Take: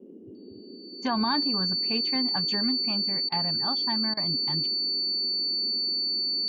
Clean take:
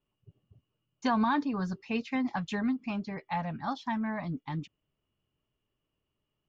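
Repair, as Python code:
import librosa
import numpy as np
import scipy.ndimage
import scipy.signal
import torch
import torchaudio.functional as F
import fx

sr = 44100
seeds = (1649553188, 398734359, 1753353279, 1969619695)

y = fx.notch(x, sr, hz=4500.0, q=30.0)
y = fx.fix_interpolate(y, sr, at_s=(3.29, 4.14), length_ms=30.0)
y = fx.noise_reduce(y, sr, print_start_s=0.0, print_end_s=0.5, reduce_db=30.0)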